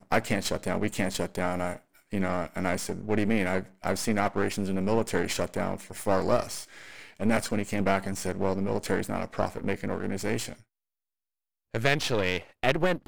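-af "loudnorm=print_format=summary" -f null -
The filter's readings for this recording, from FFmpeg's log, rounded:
Input Integrated:    -29.1 LUFS
Input True Peak:      -8.5 dBTP
Input LRA:             2.8 LU
Input Threshold:     -39.3 LUFS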